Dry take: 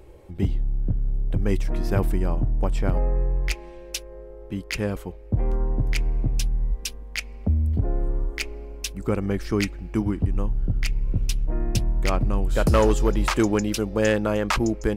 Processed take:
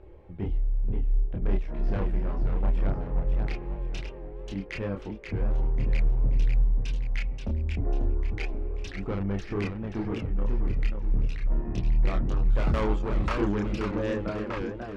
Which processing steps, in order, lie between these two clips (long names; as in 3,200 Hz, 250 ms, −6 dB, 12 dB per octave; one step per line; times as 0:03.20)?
fade-out on the ending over 1.27 s
low-pass filter 2,400 Hz 12 dB per octave
soft clipping −20.5 dBFS, distortion −13 dB
multi-voice chorus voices 2, 0.17 Hz, delay 29 ms, depth 2.5 ms
feedback echo with a swinging delay time 537 ms, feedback 40%, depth 212 cents, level −5.5 dB